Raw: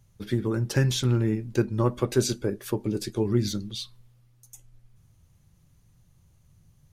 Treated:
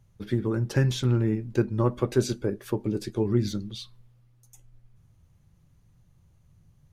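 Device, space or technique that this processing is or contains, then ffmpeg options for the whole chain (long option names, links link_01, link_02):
behind a face mask: -af "highshelf=frequency=3400:gain=-8"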